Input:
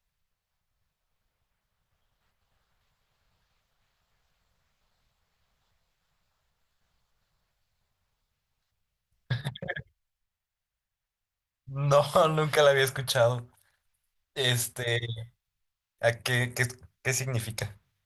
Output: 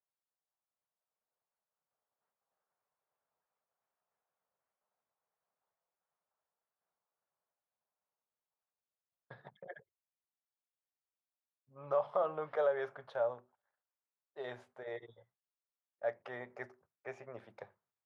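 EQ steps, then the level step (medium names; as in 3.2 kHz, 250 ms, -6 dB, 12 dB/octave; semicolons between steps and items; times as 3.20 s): high-pass 430 Hz 12 dB/octave; low-pass 1 kHz 12 dB/octave; -8.0 dB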